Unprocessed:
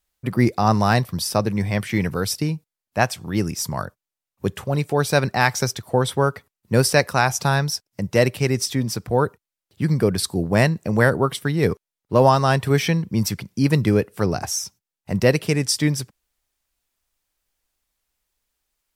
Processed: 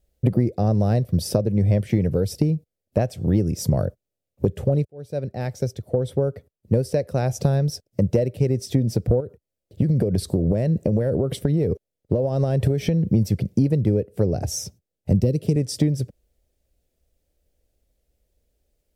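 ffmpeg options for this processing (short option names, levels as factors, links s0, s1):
-filter_complex "[0:a]asettb=1/sr,asplit=3[s0][s1][s2];[s0]atrim=end=9.204[s3];[s1]atrim=start=9.2:end=13.12,asetpts=PTS-STARTPTS,afade=t=in:d=0.004:c=qsin,afade=t=out:st=3.916:d=0.004:c=qsin,acompressor=threshold=0.0631:ratio=10:attack=3.2:release=140:knee=1:detection=peak[s4];[s2]atrim=start=13.116[s5];[s3][s4]acrossfade=d=0.004:c1=hsin:c2=qsin[s6];[s6][s5]acrossfade=d=0.004:c1=qsin:c2=hsin,asettb=1/sr,asplit=3[s7][s8][s9];[s7]atrim=end=14.444[s10];[s8]atrim=start=14.44:end=15.56,asetpts=PTS-STARTPTS,afade=t=in:d=0.004:c=qsin,afade=t=out:st=1.116:d=0.004:c=qsin,acrossover=split=400|3000[s11][s12][s13];[s12]acompressor=threshold=0.00794:ratio=6:attack=3.2:release=140:knee=2.83:detection=peak[s14];[s11][s14][s13]amix=inputs=3:normalize=0[s15];[s9]atrim=start=15.556[s16];[s10][s15]acrossfade=d=0.004:c1=hsin:c2=qsin[s17];[s17][s16]acrossfade=d=0.004:c1=qsin:c2=hsin,asplit=2[s18][s19];[s18]atrim=end=4.85,asetpts=PTS-STARTPTS,afade=t=out:st=4.846:d=0.004:c=hsin[s20];[s19]atrim=start=4.85,asetpts=PTS-STARTPTS,afade=t=in:d=3.66[s21];[s20][s21]concat=n=2:v=0:a=1,lowshelf=f=750:t=q:w=3:g=10.5,acompressor=threshold=0.158:ratio=12,equalizer=f=67:t=o:w=2.4:g=9.5,volume=0.708"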